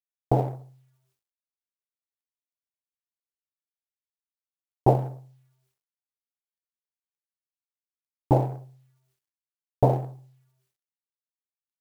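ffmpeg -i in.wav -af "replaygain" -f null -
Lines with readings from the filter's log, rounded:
track_gain = +13.4 dB
track_peak = 0.358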